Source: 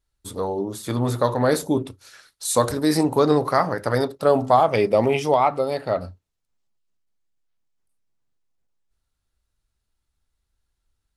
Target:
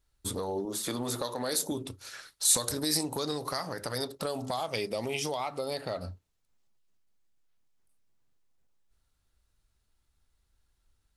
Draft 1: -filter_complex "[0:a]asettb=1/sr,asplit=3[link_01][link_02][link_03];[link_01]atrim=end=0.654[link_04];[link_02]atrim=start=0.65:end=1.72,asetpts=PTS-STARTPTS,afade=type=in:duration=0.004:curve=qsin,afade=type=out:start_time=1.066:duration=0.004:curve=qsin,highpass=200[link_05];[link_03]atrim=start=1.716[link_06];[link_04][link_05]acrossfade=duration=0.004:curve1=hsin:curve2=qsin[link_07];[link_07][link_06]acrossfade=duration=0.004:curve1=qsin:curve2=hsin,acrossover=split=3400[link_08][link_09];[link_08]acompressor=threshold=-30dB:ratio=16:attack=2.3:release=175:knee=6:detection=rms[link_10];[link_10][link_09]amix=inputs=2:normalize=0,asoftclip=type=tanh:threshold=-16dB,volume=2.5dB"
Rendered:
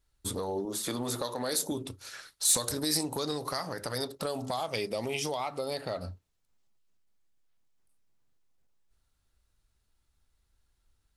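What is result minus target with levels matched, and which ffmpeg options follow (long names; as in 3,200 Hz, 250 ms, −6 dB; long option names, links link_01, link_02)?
soft clipping: distortion +16 dB
-filter_complex "[0:a]asettb=1/sr,asplit=3[link_01][link_02][link_03];[link_01]atrim=end=0.654[link_04];[link_02]atrim=start=0.65:end=1.72,asetpts=PTS-STARTPTS,afade=type=in:duration=0.004:curve=qsin,afade=type=out:start_time=1.066:duration=0.004:curve=qsin,highpass=200[link_05];[link_03]atrim=start=1.716[link_06];[link_04][link_05]acrossfade=duration=0.004:curve1=hsin:curve2=qsin[link_07];[link_07][link_06]acrossfade=duration=0.004:curve1=qsin:curve2=hsin,acrossover=split=3400[link_08][link_09];[link_08]acompressor=threshold=-30dB:ratio=16:attack=2.3:release=175:knee=6:detection=rms[link_10];[link_10][link_09]amix=inputs=2:normalize=0,asoftclip=type=tanh:threshold=-7dB,volume=2.5dB"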